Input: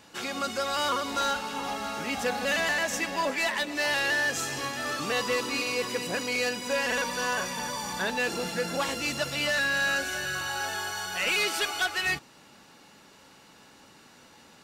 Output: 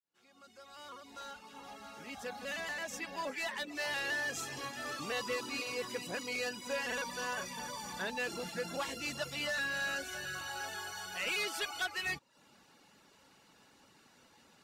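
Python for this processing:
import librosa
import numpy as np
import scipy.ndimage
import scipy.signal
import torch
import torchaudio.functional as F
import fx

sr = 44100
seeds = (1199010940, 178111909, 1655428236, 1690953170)

y = fx.fade_in_head(x, sr, length_s=4.2)
y = fx.dereverb_blind(y, sr, rt60_s=0.53)
y = y * librosa.db_to_amplitude(-8.0)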